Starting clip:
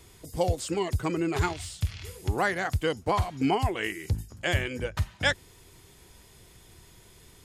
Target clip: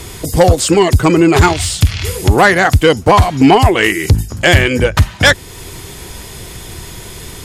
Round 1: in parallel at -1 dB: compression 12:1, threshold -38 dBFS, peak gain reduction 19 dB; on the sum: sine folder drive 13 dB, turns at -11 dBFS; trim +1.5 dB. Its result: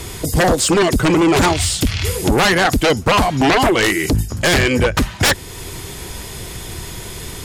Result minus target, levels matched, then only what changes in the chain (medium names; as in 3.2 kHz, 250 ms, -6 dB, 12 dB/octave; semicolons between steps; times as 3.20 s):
sine folder: distortion +17 dB
change: sine folder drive 13 dB, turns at -3 dBFS